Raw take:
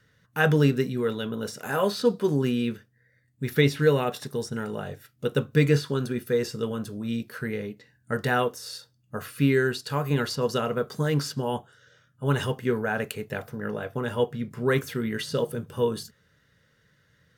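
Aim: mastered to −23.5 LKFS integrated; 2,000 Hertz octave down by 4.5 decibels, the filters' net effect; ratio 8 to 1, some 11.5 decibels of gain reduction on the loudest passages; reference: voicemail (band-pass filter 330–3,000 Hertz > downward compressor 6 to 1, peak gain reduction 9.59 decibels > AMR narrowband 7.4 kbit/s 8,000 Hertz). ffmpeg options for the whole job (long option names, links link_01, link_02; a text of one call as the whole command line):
ffmpeg -i in.wav -af "equalizer=frequency=2000:width_type=o:gain=-5.5,acompressor=threshold=-27dB:ratio=8,highpass=330,lowpass=3000,acompressor=threshold=-36dB:ratio=6,volume=19dB" -ar 8000 -c:a libopencore_amrnb -b:a 7400 out.amr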